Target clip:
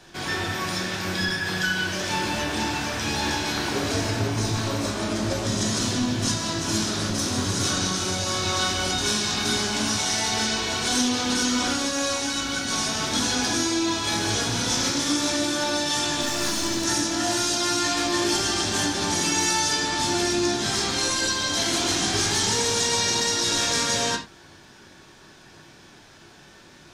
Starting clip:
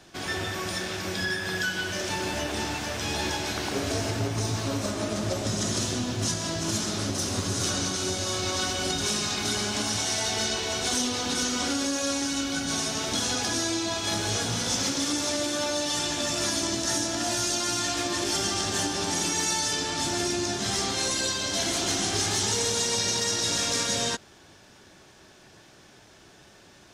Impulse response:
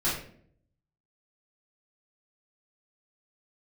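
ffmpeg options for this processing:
-filter_complex "[0:a]asettb=1/sr,asplit=3[link_01][link_02][link_03];[link_01]atrim=end=16.214[link_04];[link_02]atrim=start=16.21:end=16.84,asetpts=PTS-STARTPTS,afade=type=in:duration=0.004:curve=qsin,afade=type=out:start_time=0.626:duration=0.004:curve=qsin,aeval=exprs='clip(val(0),-1,0.0376)':channel_layout=same[link_05];[link_03]atrim=start=16.836[link_06];[link_04][link_05]acrossfade=duration=0.004:curve1=hsin:curve2=qsin[link_07];[link_07][link_06]acrossfade=duration=0.004:curve1=qsin:curve2=hsin,asplit=2[link_08][link_09];[link_09]equalizer=frequency=250:width_type=o:width=1:gain=6,equalizer=frequency=500:width_type=o:width=1:gain=-5,equalizer=frequency=1000:width_type=o:width=1:gain=6,equalizer=frequency=2000:width_type=o:width=1:gain=4,equalizer=frequency=4000:width_type=o:width=1:gain=5[link_10];[1:a]atrim=start_sample=2205,afade=type=out:start_time=0.15:duration=0.01,atrim=end_sample=7056[link_11];[link_10][link_11]afir=irnorm=-1:irlink=0,volume=-13.5dB[link_12];[link_08][link_12]amix=inputs=2:normalize=0"

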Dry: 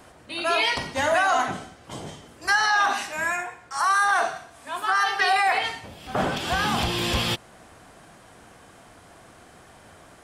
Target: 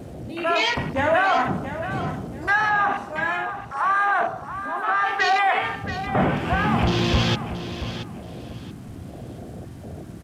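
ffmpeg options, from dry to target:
ffmpeg -i in.wav -filter_complex "[0:a]aeval=exprs='val(0)+0.5*0.0237*sgn(val(0))':channel_layout=same,asettb=1/sr,asplit=3[link_01][link_02][link_03];[link_01]atrim=end=2.694[link_04];[link_02]atrim=start=2.69:end=5.04,asetpts=PTS-STARTPTS,afade=type=in:duration=0.004:curve=qsin,afade=type=out:start_time=2.346:duration=0.004:curve=qsin,highshelf=frequency=2800:gain=-6[link_05];[link_03]atrim=start=5.036[link_06];[link_04][link_05]acrossfade=duration=0.004:curve1=hsin:curve2=qsin[link_07];[link_07][link_06]acrossfade=duration=0.004:curve1=qsin:curve2=hsin,aresample=32000,aresample=44100,equalizer=frequency=130:width=0.47:gain=7.5,afwtdn=0.0398,aecho=1:1:678|1356|2034:0.282|0.0705|0.0176" out.wav

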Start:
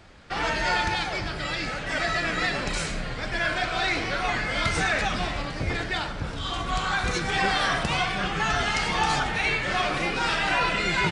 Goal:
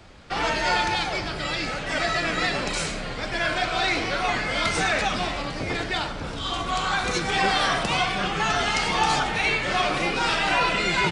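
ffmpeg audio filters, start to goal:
ffmpeg -i in.wav -filter_complex "[0:a]acrossover=split=190[link_01][link_02];[link_01]asoftclip=type=tanh:threshold=-36.5dB[link_03];[link_03][link_02]amix=inputs=2:normalize=0,equalizer=frequency=1700:width_type=o:width=0.59:gain=-3.5,volume=3dB" out.wav

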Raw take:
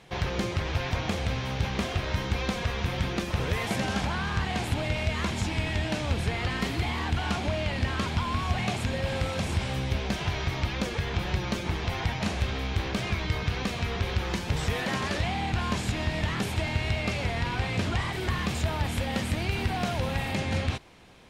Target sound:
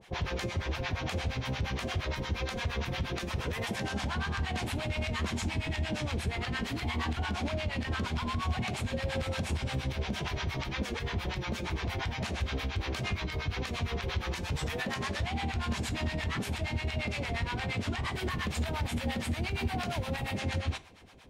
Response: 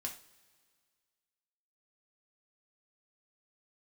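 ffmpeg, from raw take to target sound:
-filter_complex "[0:a]acrossover=split=680[link_01][link_02];[link_01]aeval=exprs='val(0)*(1-1/2+1/2*cos(2*PI*8.6*n/s))':channel_layout=same[link_03];[link_02]aeval=exprs='val(0)*(1-1/2-1/2*cos(2*PI*8.6*n/s))':channel_layout=same[link_04];[link_03][link_04]amix=inputs=2:normalize=0,alimiter=level_in=2.5dB:limit=-24dB:level=0:latency=1:release=93,volume=-2.5dB,asplit=2[link_05][link_06];[1:a]atrim=start_sample=2205[link_07];[link_06][link_07]afir=irnorm=-1:irlink=0,volume=-6.5dB[link_08];[link_05][link_08]amix=inputs=2:normalize=0"

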